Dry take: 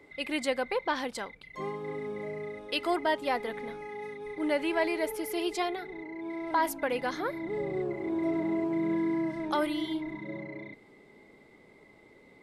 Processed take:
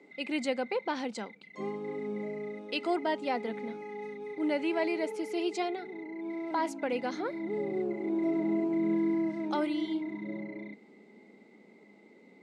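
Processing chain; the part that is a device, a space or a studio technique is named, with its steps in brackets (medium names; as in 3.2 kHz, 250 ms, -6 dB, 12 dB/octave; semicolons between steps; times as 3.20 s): television speaker (cabinet simulation 190–7400 Hz, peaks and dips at 210 Hz +9 dB, 590 Hz -3 dB, 1.1 kHz -8 dB, 1.7 kHz -8 dB, 3.4 kHz -6 dB, 5.2 kHz -4 dB)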